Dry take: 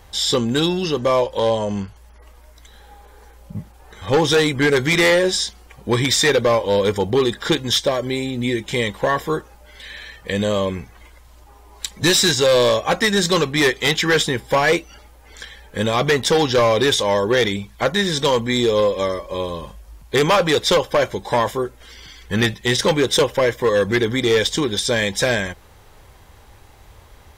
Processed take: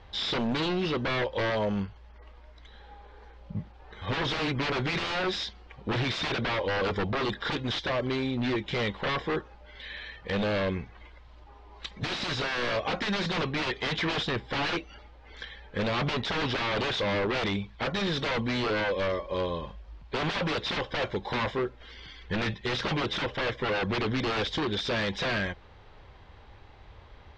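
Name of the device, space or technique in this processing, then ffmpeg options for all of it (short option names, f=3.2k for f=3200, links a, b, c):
synthesiser wavefolder: -af "aeval=exprs='0.126*(abs(mod(val(0)/0.126+3,4)-2)-1)':c=same,lowpass=f=4.2k:w=0.5412,lowpass=f=4.2k:w=1.3066,volume=-4.5dB"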